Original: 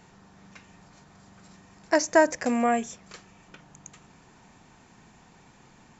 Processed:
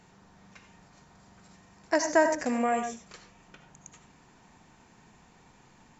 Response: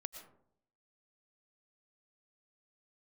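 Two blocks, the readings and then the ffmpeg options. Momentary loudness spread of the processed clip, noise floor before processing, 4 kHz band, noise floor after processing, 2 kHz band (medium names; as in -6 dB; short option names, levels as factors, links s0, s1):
12 LU, -56 dBFS, -3.0 dB, -59 dBFS, -3.0 dB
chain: -filter_complex "[1:a]atrim=start_sample=2205,afade=t=out:st=0.29:d=0.01,atrim=end_sample=13230,asetrate=66150,aresample=44100[s0];[0:a][s0]afir=irnorm=-1:irlink=0,volume=1.58"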